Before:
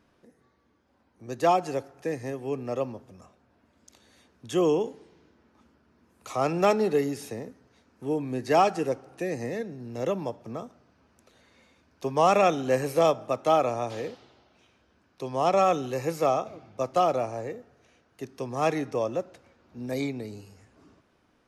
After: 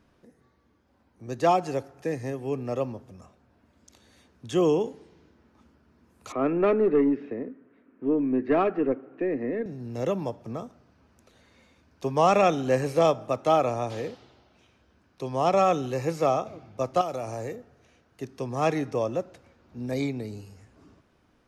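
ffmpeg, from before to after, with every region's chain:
-filter_complex "[0:a]asettb=1/sr,asplit=3[s0][s1][s2];[s0]atrim=end=6.324[s3];[s1]atrim=start=6.32:end=9.66,asetpts=PTS-STARTPTS,afade=t=in:d=0.004:c=qsin,afade=t=out:st=3.336:d=0.004:c=qsin,highpass=230,equalizer=f=270:t=q:w=4:g=10,equalizer=f=390:t=q:w=4:g=5,equalizer=f=830:t=q:w=4:g=-10,lowpass=f=2300:w=0.5412,lowpass=f=2300:w=1.3066,aeval=exprs='(tanh(5.01*val(0)+0.1)-tanh(0.1))/5.01':c=same[s4];[s2]atrim=start=9.656[s5];[s3][s4]acrossfade=d=0.004:c1=hsin:c2=qsin[s6];[s6][s5]acrossfade=d=0.004:c1=qsin:c2=hsin,asettb=1/sr,asplit=3[s7][s8][s9];[s7]atrim=end=17.014[s10];[s8]atrim=start=17.01:end=17.56,asetpts=PTS-STARTPTS,afade=t=in:d=0.004:c=qsin,afade=t=out:st=0.546:d=0.004:c=qsin,aemphasis=mode=production:type=50kf,acompressor=threshold=0.0355:ratio=4:attack=3.2:release=140:knee=1:detection=peak[s11];[s9]atrim=start=17.556[s12];[s10][s11]acrossfade=d=0.004:c1=hsin:c2=qsin[s13];[s13][s12]acrossfade=d=0.004:c1=qsin:c2=hsin,lowshelf=f=160:g=6.5,acrossover=split=8700[s14][s15];[s15]acompressor=threshold=0.00112:ratio=4:attack=1:release=60[s16];[s14][s16]amix=inputs=2:normalize=0"

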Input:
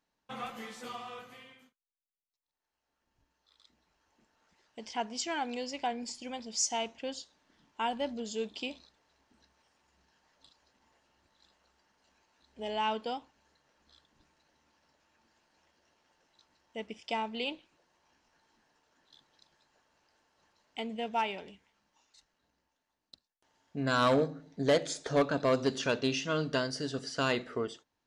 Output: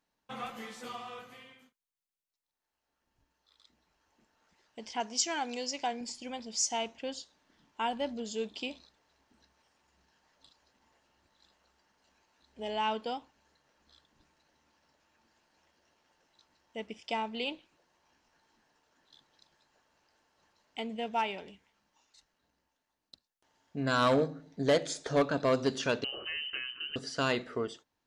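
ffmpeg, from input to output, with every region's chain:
-filter_complex "[0:a]asettb=1/sr,asplit=3[s0][s1][s2];[s0]atrim=end=5.004[s3];[s1]atrim=start=5:end=6.01,asetpts=PTS-STARTPTS,afade=t=in:d=0.004:c=qsin,afade=t=out:st=1.006:d=0.004:c=qsin,highpass=f=170:p=1,equalizer=f=6200:t=o:w=0.72:g=10[s4];[s2]atrim=start=6.006[s5];[s3][s4]acrossfade=d=0.004:c1=hsin:c2=qsin[s6];[s6][s5]acrossfade=d=0.004:c1=qsin:c2=hsin,asettb=1/sr,asplit=3[s7][s8][s9];[s7]atrim=end=26.044[s10];[s8]atrim=start=26.04:end=26.96,asetpts=PTS-STARTPTS,afade=t=in:d=0.004:c=qsin,afade=t=out:st=0.916:d=0.004:c=qsin,highpass=49,acompressor=threshold=0.02:ratio=4:attack=3.2:release=140:knee=1:detection=peak,lowpass=f=2700:t=q:w=0.5098,lowpass=f=2700:t=q:w=0.6013,lowpass=f=2700:t=q:w=0.9,lowpass=f=2700:t=q:w=2.563,afreqshift=-3200[s11];[s9]atrim=start=26.956[s12];[s10][s11]acrossfade=d=0.004:c1=hsin:c2=qsin[s13];[s13][s12]acrossfade=d=0.004:c1=qsin:c2=hsin"

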